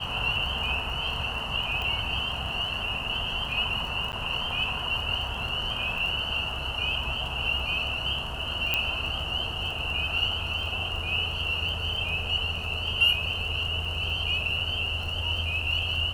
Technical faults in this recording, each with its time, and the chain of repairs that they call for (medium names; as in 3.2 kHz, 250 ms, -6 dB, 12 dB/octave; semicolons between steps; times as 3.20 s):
crackle 29 per s -34 dBFS
1.82 s: pop -20 dBFS
4.12–4.13 s: dropout 9.7 ms
8.74 s: pop -10 dBFS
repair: de-click; interpolate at 4.12 s, 9.7 ms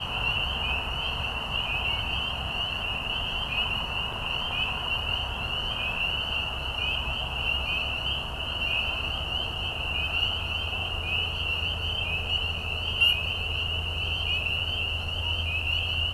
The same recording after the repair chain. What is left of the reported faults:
nothing left